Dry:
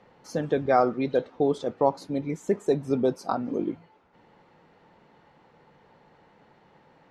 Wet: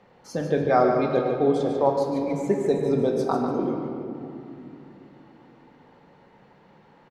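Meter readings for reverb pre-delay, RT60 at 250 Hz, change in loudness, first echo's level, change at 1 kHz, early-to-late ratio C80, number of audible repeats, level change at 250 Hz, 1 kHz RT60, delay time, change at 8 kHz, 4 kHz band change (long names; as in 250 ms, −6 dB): 5 ms, 4.2 s, +2.5 dB, −8.0 dB, +2.0 dB, 3.0 dB, 1, +3.5 dB, 2.7 s, 146 ms, can't be measured, +2.0 dB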